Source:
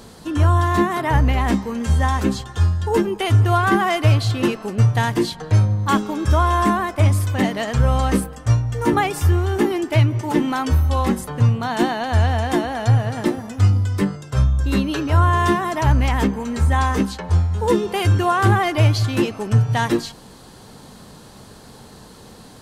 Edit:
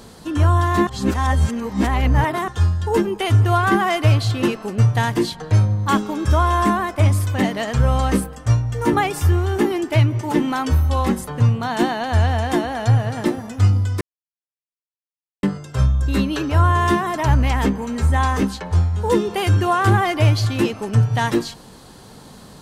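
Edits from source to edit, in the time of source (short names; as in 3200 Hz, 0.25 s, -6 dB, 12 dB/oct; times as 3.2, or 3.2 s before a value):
0.87–2.48 reverse
14.01 insert silence 1.42 s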